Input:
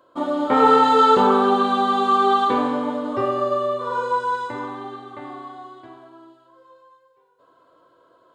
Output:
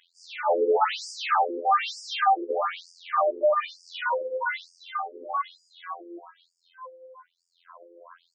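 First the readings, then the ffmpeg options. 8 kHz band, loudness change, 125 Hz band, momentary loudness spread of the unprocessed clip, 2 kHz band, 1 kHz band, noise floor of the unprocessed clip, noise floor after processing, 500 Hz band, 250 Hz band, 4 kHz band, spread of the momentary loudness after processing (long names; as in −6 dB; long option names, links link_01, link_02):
can't be measured, −7.5 dB, below −40 dB, 22 LU, −1.0 dB, −7.0 dB, −59 dBFS, −75 dBFS, −6.0 dB, −18.0 dB, −4.0 dB, 18 LU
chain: -filter_complex "[0:a]afftfilt=real='hypot(re,im)*cos(PI*b)':imag='0':win_size=2048:overlap=0.75,asplit=2[link_01][link_02];[link_02]highpass=frequency=720:poles=1,volume=32dB,asoftclip=type=tanh:threshold=-3dB[link_03];[link_01][link_03]amix=inputs=2:normalize=0,lowpass=frequency=3200:poles=1,volume=-6dB,afftfilt=real='re*between(b*sr/1024,370*pow(6700/370,0.5+0.5*sin(2*PI*1.1*pts/sr))/1.41,370*pow(6700/370,0.5+0.5*sin(2*PI*1.1*pts/sr))*1.41)':imag='im*between(b*sr/1024,370*pow(6700/370,0.5+0.5*sin(2*PI*1.1*pts/sr))/1.41,370*pow(6700/370,0.5+0.5*sin(2*PI*1.1*pts/sr))*1.41)':win_size=1024:overlap=0.75,volume=-7dB"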